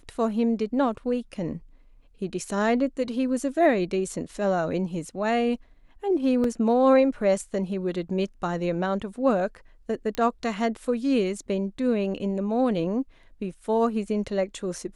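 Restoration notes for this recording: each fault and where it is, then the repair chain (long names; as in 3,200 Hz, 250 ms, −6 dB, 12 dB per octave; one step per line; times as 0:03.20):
0:06.44: drop-out 2.6 ms
0:10.15: click −15 dBFS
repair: click removal
repair the gap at 0:06.44, 2.6 ms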